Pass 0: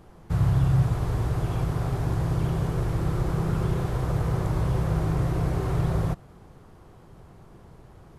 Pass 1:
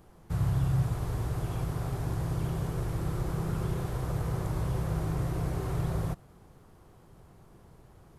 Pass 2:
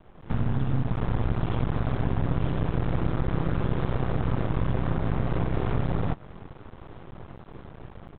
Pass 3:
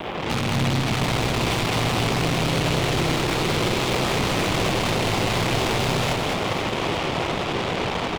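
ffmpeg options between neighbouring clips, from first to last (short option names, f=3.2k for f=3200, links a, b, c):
-af "highshelf=f=7.8k:g=9,volume=-6dB"
-af "acompressor=threshold=-34dB:ratio=6,aresample=8000,aeval=exprs='max(val(0),0)':c=same,aresample=44100,dynaudnorm=f=140:g=3:m=10dB,volume=5.5dB"
-filter_complex "[0:a]asplit=2[a][b];[b]highpass=f=720:p=1,volume=46dB,asoftclip=type=tanh:threshold=-11dB[c];[a][c]amix=inputs=2:normalize=0,lowpass=f=1.1k:p=1,volume=-6dB,aexciter=amount=3.1:drive=7.5:freq=2.2k,asplit=2[d][e];[e]aecho=0:1:210|483|837.9|1299|1899:0.631|0.398|0.251|0.158|0.1[f];[d][f]amix=inputs=2:normalize=0,volume=-5dB"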